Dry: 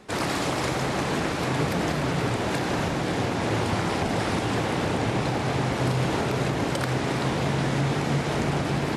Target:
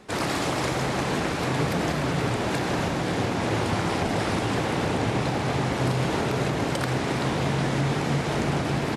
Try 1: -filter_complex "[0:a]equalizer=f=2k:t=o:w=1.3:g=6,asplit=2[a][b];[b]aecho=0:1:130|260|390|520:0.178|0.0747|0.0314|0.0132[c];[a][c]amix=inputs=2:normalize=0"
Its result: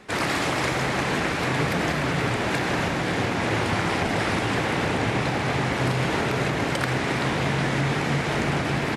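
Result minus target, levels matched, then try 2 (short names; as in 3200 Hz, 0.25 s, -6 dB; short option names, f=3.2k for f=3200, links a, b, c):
2000 Hz band +3.5 dB
-filter_complex "[0:a]asplit=2[a][b];[b]aecho=0:1:130|260|390|520:0.178|0.0747|0.0314|0.0132[c];[a][c]amix=inputs=2:normalize=0"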